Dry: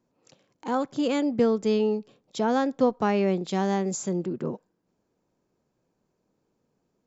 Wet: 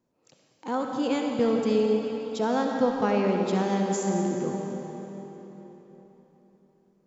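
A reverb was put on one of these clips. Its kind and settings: digital reverb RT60 4 s, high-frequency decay 0.85×, pre-delay 25 ms, DRR 1 dB; gain -2.5 dB

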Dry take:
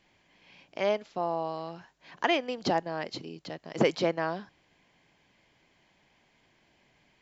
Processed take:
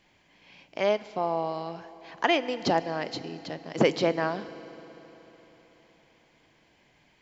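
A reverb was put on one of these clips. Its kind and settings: FDN reverb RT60 4 s, high-frequency decay 0.85×, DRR 13.5 dB; gain +2.5 dB

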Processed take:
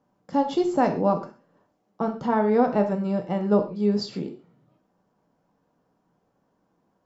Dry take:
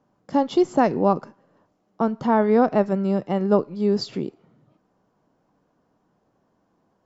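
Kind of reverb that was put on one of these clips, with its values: non-linear reverb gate 0.16 s falling, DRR 4 dB; gain -4 dB

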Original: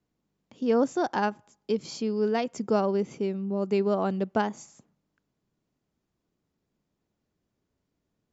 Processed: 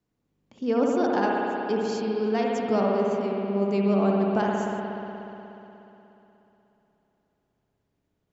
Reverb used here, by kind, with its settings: spring tank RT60 3.3 s, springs 60 ms, chirp 55 ms, DRR -2.5 dB; gain -1.5 dB

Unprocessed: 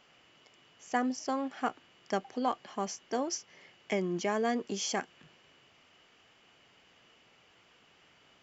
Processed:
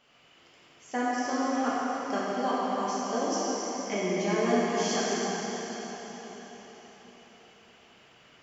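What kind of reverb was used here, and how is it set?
plate-style reverb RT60 4.9 s, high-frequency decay 0.85×, DRR -8.5 dB; gain -3.5 dB

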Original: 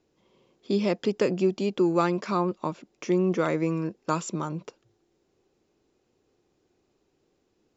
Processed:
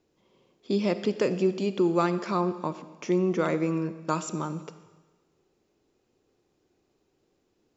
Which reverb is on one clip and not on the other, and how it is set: digital reverb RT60 1.3 s, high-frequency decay 1×, pre-delay 5 ms, DRR 12 dB; gain -1 dB

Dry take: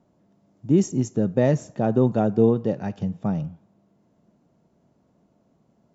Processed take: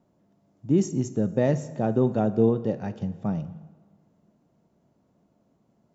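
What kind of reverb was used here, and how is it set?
plate-style reverb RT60 1.5 s, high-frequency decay 0.8×, DRR 14 dB; gain -3 dB

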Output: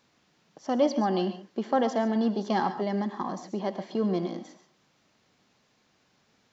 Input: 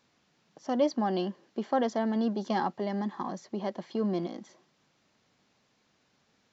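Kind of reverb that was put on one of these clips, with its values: non-linear reverb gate 0.16 s rising, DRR 10 dB; gain +2.5 dB

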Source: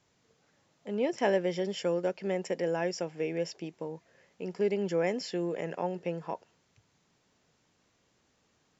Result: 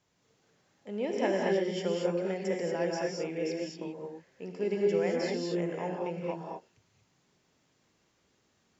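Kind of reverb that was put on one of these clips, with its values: non-linear reverb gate 0.26 s rising, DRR -1.5 dB; gain -4 dB

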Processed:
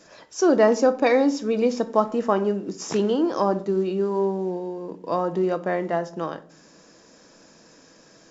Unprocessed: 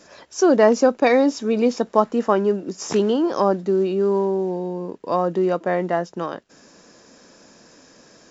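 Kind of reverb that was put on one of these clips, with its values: shoebox room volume 510 m³, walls furnished, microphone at 0.63 m; gain -3 dB

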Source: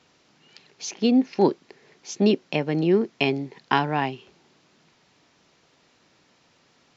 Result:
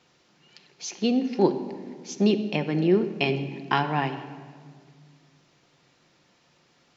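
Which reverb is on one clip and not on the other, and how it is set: shoebox room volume 2900 m³, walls mixed, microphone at 0.88 m; gain -2.5 dB

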